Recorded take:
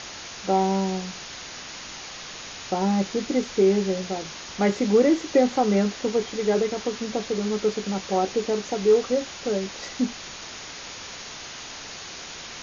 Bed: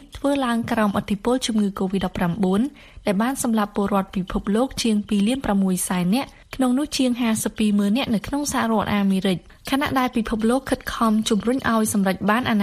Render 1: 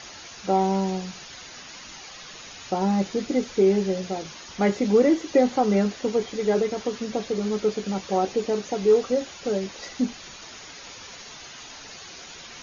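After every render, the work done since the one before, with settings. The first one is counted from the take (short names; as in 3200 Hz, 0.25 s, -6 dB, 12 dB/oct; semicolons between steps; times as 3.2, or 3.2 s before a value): denoiser 8 dB, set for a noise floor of -39 dBFS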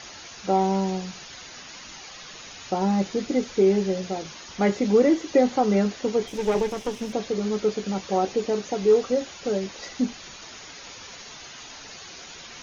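6.27–7.13 minimum comb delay 0.34 ms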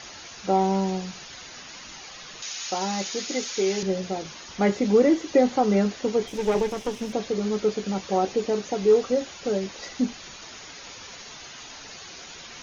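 2.42–3.83 tilt +4 dB/oct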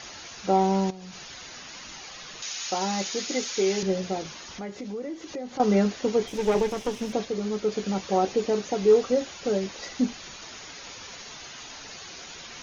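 0.9–1.75 compressor 10:1, threshold -37 dBFS; 4.35–5.6 compressor 3:1, threshold -37 dBFS; 7.25–7.72 gain -3 dB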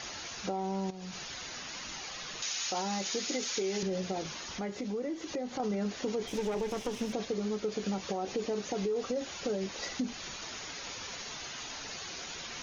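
limiter -20 dBFS, peak gain reduction 10 dB; compressor 3:1, threshold -31 dBFS, peak gain reduction 6.5 dB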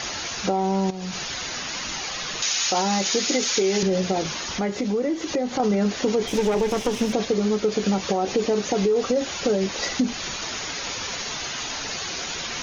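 gain +11.5 dB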